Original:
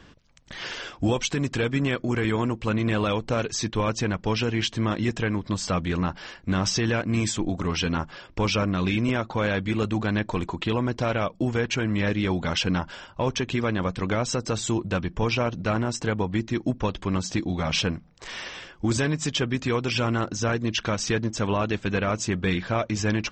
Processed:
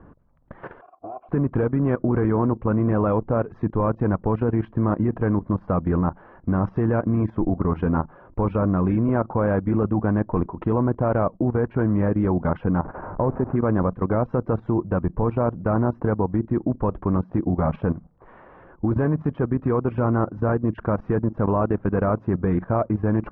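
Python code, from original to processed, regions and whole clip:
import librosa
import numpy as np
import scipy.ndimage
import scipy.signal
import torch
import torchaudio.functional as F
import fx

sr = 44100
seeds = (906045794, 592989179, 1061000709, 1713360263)

y = fx.chain(x, sr, fx.lower_of_two(delay_ms=2.9),
    fx.vowel_filter(vowel='a'),
    fx.high_shelf(hz=4400.0, db=-3.5), at=(0.81, 1.29))
y = fx.chain(y, sr, fx.delta_mod(bps=16000, step_db=-29.5),
    fx.lowpass(hz=1500.0, slope=12), at=(12.84, 13.56))
y = scipy.signal.sosfilt(scipy.signal.butter(4, 1200.0, 'lowpass', fs=sr, output='sos'), y)
y = fx.level_steps(y, sr, step_db=14)
y = F.gain(torch.from_numpy(y), 8.0).numpy()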